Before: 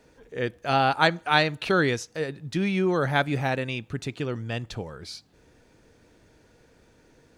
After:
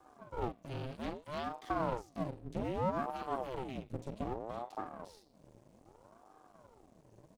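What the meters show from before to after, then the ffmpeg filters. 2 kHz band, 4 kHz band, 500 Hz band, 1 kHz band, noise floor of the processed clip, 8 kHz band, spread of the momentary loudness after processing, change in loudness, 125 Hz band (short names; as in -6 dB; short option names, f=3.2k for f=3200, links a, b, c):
-23.5 dB, -23.0 dB, -12.0 dB, -12.0 dB, -66 dBFS, under -15 dB, 9 LU, -14.0 dB, -14.0 dB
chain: -filter_complex "[0:a]firequalizer=gain_entry='entry(120,0);entry(460,11);entry(660,-24);entry(2500,-5);entry(3700,-6);entry(8100,3)':delay=0.05:min_phase=1,acrossover=split=250|890|2000[a][b][c][d];[c]acrusher=bits=2:mode=log:mix=0:aa=0.000001[e];[a][b][e][d]amix=inputs=4:normalize=0,acompressor=threshold=-40dB:ratio=1.5,equalizer=f=110:w=1.3:g=6,asplit=2[f][g];[g]adelay=40,volume=-7.5dB[h];[f][h]amix=inputs=2:normalize=0,bandreject=f=212:t=h:w=4,bandreject=f=424:t=h:w=4,bandreject=f=636:t=h:w=4,bandreject=f=848:t=h:w=4,bandreject=f=1.06k:t=h:w=4,bandreject=f=1.272k:t=h:w=4,bandreject=f=1.484k:t=h:w=4,bandreject=f=1.696k:t=h:w=4,bandreject=f=1.908k:t=h:w=4,bandreject=f=2.12k:t=h:w=4,bandreject=f=2.332k:t=h:w=4,bandreject=f=2.544k:t=h:w=4,bandreject=f=2.756k:t=h:w=4,bandreject=f=2.968k:t=h:w=4,bandreject=f=3.18k:t=h:w=4,bandreject=f=3.392k:t=h:w=4,bandreject=f=3.604k:t=h:w=4,bandreject=f=3.816k:t=h:w=4,bandreject=f=4.028k:t=h:w=4,bandreject=f=4.24k:t=h:w=4,bandreject=f=4.452k:t=h:w=4,bandreject=f=4.664k:t=h:w=4,bandreject=f=4.876k:t=h:w=4,bandreject=f=5.088k:t=h:w=4,bandreject=f=5.3k:t=h:w=4,bandreject=f=5.512k:t=h:w=4,bandreject=f=5.724k:t=h:w=4,bandreject=f=5.936k:t=h:w=4,acrossover=split=3000[i][j];[j]acompressor=threshold=-51dB:ratio=4:attack=1:release=60[k];[i][k]amix=inputs=2:normalize=0,aeval=exprs='max(val(0),0)':c=same,aeval=exprs='val(0)*sin(2*PI*440*n/s+440*0.75/0.63*sin(2*PI*0.63*n/s))':c=same,volume=-3.5dB"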